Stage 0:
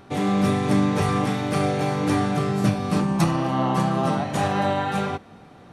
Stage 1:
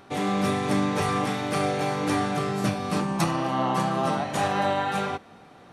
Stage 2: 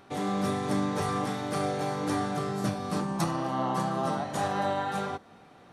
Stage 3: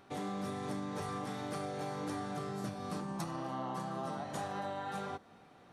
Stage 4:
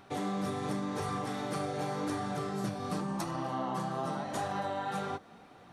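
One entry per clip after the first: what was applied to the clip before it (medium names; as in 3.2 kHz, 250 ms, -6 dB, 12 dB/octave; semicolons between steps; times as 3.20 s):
bass shelf 270 Hz -8.5 dB
dynamic bell 2.5 kHz, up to -7 dB, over -50 dBFS, Q 2.1; trim -4 dB
compression, threshold -30 dBFS, peak gain reduction 7.5 dB; trim -5.5 dB
flange 0.88 Hz, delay 0.8 ms, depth 7.1 ms, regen -50%; trim +8.5 dB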